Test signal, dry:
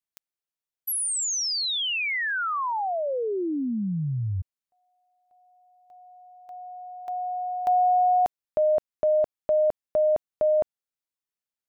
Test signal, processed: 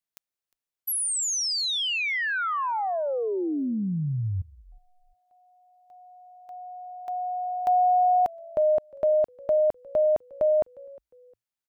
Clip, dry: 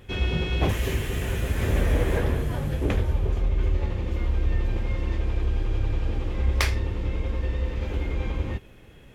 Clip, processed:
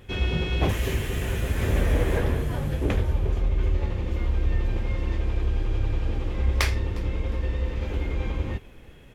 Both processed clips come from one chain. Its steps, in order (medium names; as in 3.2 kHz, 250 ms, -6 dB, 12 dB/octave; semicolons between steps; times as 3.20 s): frequency-shifting echo 356 ms, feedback 32%, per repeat -59 Hz, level -23 dB